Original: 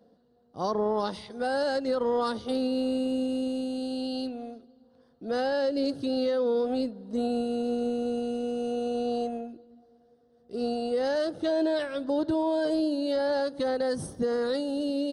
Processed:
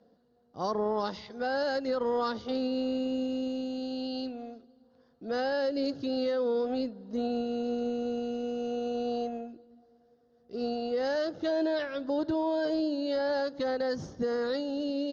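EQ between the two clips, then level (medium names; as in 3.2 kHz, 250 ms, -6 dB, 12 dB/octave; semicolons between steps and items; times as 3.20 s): rippled Chebyshev low-pass 6.9 kHz, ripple 3 dB; 0.0 dB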